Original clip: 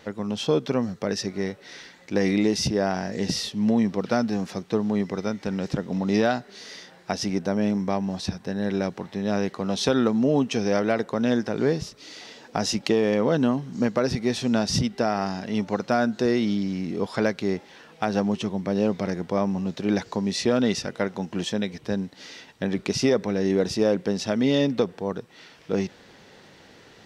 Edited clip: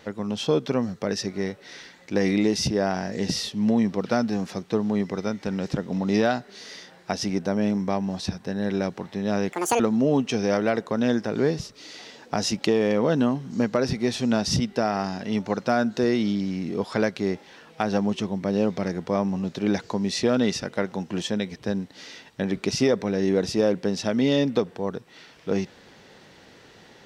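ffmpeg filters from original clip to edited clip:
-filter_complex "[0:a]asplit=3[a][b][c];[a]atrim=end=9.524[d];[b]atrim=start=9.52:end=10.02,asetpts=PTS-STARTPTS,asetrate=79380,aresample=44100[e];[c]atrim=start=10.016[f];[d][e]acrossfade=d=0.004:c1=hsin:c2=hsin[g];[g][f]acrossfade=d=0.004:c1=hsin:c2=hsin"

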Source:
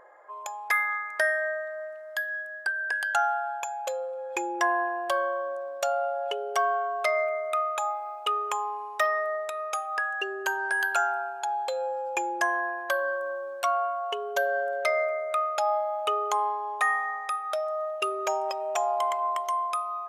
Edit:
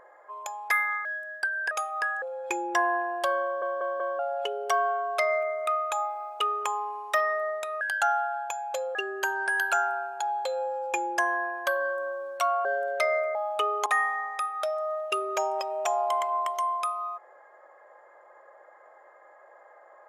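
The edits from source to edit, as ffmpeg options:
-filter_complex "[0:a]asplit=13[a][b][c][d][e][f][g][h][i][j][k][l][m];[a]atrim=end=1.052[n];[b]atrim=start=2.278:end=2.942[o];[c]atrim=start=9.668:end=10.182[p];[d]atrim=start=4.078:end=5.482[q];[e]atrim=start=5.288:end=5.482[r];[f]atrim=start=5.288:end=5.482[s];[g]atrim=start=5.288:end=5.482[t];[h]atrim=start=6.048:end=9.672[u];[i]atrim=start=2.938:end=4.082[v];[j]atrim=start=10.178:end=13.882[w];[k]atrim=start=14.498:end=15.202[x];[l]atrim=start=15.828:end=16.342[y];[m]atrim=start=16.758[z];[n][o]acrossfade=d=0.004:c1=hsin:c2=hsin[aa];[aa][p]acrossfade=d=0.004:c1=hsin:c2=hsin[ab];[ab][q]acrossfade=d=0.004:c1=hsin:c2=hsin[ac];[ac][r]acrossfade=d=0.004:c1=hsin:c2=hsin[ad];[ad][s]acrossfade=d=0.004:c1=hsin:c2=hsin[ae];[ae][t]acrossfade=d=0.004:c1=hsin:c2=hsin[af];[af][u]acrossfade=d=0.004:c1=hsin:c2=hsin[ag];[ag][v]acrossfade=d=0.004:c1=hsin:c2=hsin[ah];[ah][w]acrossfade=d=0.004:c1=hsin:c2=hsin[ai];[ai][x]acrossfade=d=0.004:c1=hsin:c2=hsin[aj];[aj][y]acrossfade=d=0.004:c1=hsin:c2=hsin[ak];[ak][z]acrossfade=d=0.004:c1=hsin:c2=hsin"

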